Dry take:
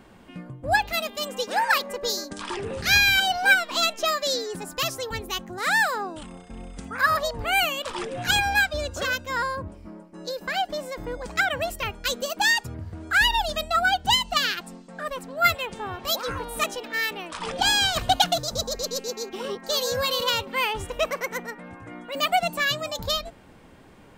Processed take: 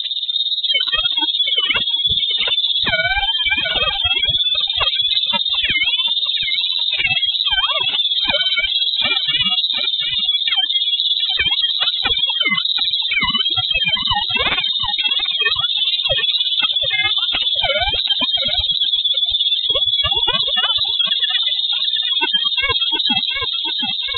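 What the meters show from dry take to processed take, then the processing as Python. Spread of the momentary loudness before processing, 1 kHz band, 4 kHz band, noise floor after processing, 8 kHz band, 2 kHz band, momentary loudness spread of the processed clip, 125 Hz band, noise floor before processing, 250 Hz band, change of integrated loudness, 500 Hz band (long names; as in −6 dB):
15 LU, −2.0 dB, +15.0 dB, −24 dBFS, below −40 dB, +2.5 dB, 2 LU, +1.5 dB, −49 dBFS, +0.5 dB, +9.5 dB, −2.5 dB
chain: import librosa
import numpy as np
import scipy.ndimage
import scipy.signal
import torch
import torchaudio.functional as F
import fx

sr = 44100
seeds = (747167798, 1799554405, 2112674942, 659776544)

y = fx.halfwave_hold(x, sr)
y = fx.low_shelf(y, sr, hz=470.0, db=11.0)
y = fx.rider(y, sr, range_db=4, speed_s=0.5)
y = y * (1.0 - 0.92 / 2.0 + 0.92 / 2.0 * np.cos(2.0 * np.pi * 17.0 * (np.arange(len(y)) / sr)))
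y = fx.highpass(y, sr, hz=210.0, slope=6)
y = fx.peak_eq(y, sr, hz=1500.0, db=-3.5, octaves=1.4)
y = fx.echo_feedback(y, sr, ms=725, feedback_pct=36, wet_db=-15)
y = fx.spec_gate(y, sr, threshold_db=-20, keep='strong')
y = fx.freq_invert(y, sr, carrier_hz=3900)
y = fx.env_flatten(y, sr, amount_pct=70)
y = F.gain(torch.from_numpy(y), 1.0).numpy()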